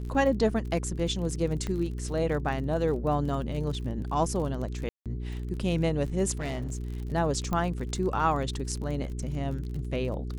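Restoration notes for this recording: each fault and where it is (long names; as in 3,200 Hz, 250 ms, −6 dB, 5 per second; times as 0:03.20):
surface crackle 38 per second −36 dBFS
mains hum 60 Hz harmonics 7 −34 dBFS
0:01.67: click −20 dBFS
0:04.89–0:05.06: drop-out 167 ms
0:06.37–0:06.81: clipping −28.5 dBFS
0:07.53: click −17 dBFS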